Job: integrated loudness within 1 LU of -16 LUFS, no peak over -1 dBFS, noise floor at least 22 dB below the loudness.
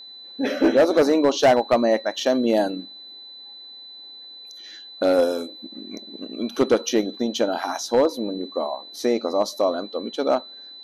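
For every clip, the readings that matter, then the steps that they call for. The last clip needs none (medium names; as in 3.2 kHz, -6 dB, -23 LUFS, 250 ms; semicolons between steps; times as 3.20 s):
clipped samples 0.6%; clipping level -10.5 dBFS; steady tone 4 kHz; tone level -39 dBFS; loudness -22.0 LUFS; peak level -10.5 dBFS; loudness target -16.0 LUFS
-> clip repair -10.5 dBFS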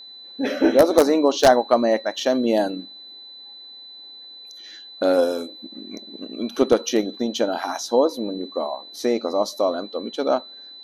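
clipped samples 0.0%; steady tone 4 kHz; tone level -39 dBFS
-> band-stop 4 kHz, Q 30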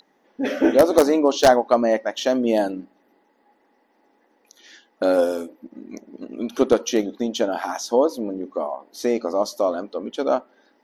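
steady tone not found; loudness -21.5 LUFS; peak level -1.5 dBFS; loudness target -16.0 LUFS
-> trim +5.5 dB; peak limiter -1 dBFS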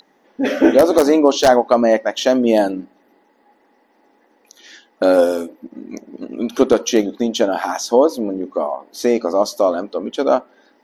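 loudness -16.5 LUFS; peak level -1.0 dBFS; noise floor -58 dBFS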